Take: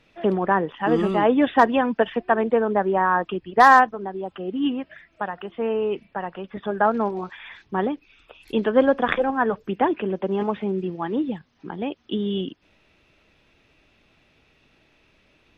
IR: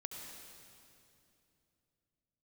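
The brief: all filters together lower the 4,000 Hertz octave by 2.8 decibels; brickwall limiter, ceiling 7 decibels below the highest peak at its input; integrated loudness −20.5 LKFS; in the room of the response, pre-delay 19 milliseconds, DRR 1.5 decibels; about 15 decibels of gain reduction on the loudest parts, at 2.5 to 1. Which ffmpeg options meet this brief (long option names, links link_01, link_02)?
-filter_complex "[0:a]equalizer=frequency=4000:width_type=o:gain=-4,acompressor=threshold=-32dB:ratio=2.5,alimiter=limit=-21.5dB:level=0:latency=1,asplit=2[link_01][link_02];[1:a]atrim=start_sample=2205,adelay=19[link_03];[link_02][link_03]afir=irnorm=-1:irlink=0,volume=0.5dB[link_04];[link_01][link_04]amix=inputs=2:normalize=0,volume=11dB"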